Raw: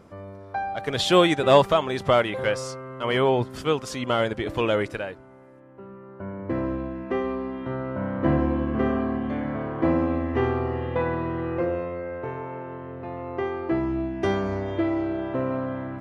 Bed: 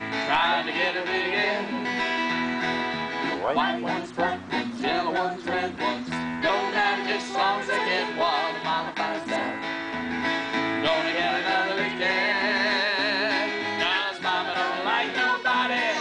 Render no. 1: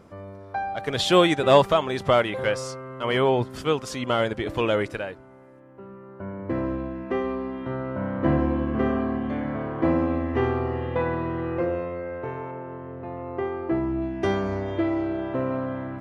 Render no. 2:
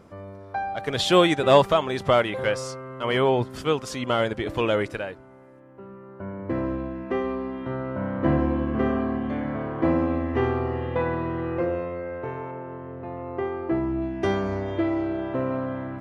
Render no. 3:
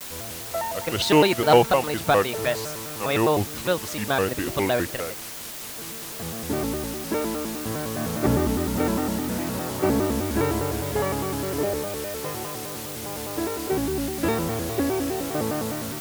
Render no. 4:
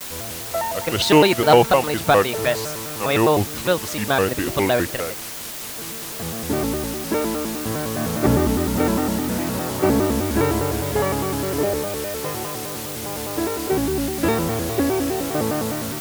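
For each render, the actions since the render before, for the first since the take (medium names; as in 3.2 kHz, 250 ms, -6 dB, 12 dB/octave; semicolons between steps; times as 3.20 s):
12.51–14.02 s: treble shelf 2.7 kHz -9.5 dB
no audible change
word length cut 6-bit, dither triangular; vibrato with a chosen wave square 4.9 Hz, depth 250 cents
trim +4 dB; peak limiter -2 dBFS, peak gain reduction 2.5 dB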